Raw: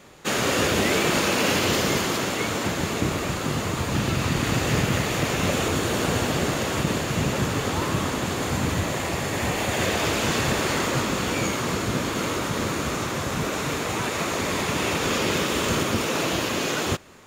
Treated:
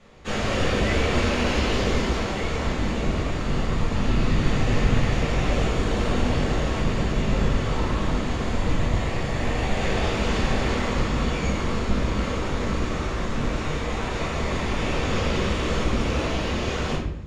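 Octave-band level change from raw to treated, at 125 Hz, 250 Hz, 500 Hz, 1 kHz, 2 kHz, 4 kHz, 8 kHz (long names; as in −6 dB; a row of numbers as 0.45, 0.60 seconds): +2.0, 0.0, −1.0, −2.5, −3.0, −4.5, −10.0 decibels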